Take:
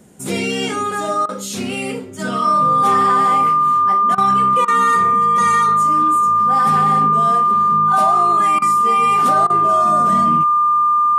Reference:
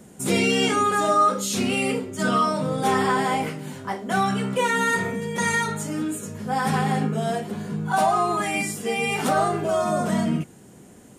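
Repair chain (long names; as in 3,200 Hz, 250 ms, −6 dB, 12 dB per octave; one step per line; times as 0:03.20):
notch filter 1,200 Hz, Q 30
repair the gap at 0:01.26/0:04.15/0:04.65/0:08.59/0:09.47, 28 ms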